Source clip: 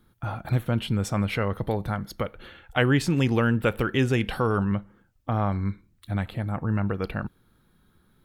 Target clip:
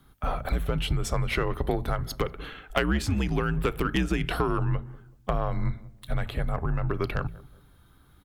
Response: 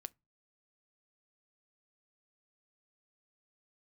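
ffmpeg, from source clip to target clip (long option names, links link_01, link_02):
-filter_complex "[0:a]bandreject=frequency=60:width_type=h:width=6,bandreject=frequency=120:width_type=h:width=6,bandreject=frequency=180:width_type=h:width=6,bandreject=frequency=240:width_type=h:width=6,bandreject=frequency=300:width_type=h:width=6,acompressor=threshold=-26dB:ratio=12,aeval=exprs='0.15*(cos(1*acos(clip(val(0)/0.15,-1,1)))-cos(1*PI/2))+0.0376*(cos(2*acos(clip(val(0)/0.15,-1,1)))-cos(2*PI/2))+0.015*(cos(4*acos(clip(val(0)/0.15,-1,1)))-cos(4*PI/2))+0.00841*(cos(6*acos(clip(val(0)/0.15,-1,1)))-cos(6*PI/2))':channel_layout=same,afreqshift=-73,asplit=2[link_01][link_02];[link_02]adelay=188,lowpass=frequency=840:poles=1,volume=-18.5dB,asplit=2[link_03][link_04];[link_04]adelay=188,lowpass=frequency=840:poles=1,volume=0.37,asplit=2[link_05][link_06];[link_06]adelay=188,lowpass=frequency=840:poles=1,volume=0.37[link_07];[link_01][link_03][link_05][link_07]amix=inputs=4:normalize=0,volume=5dB"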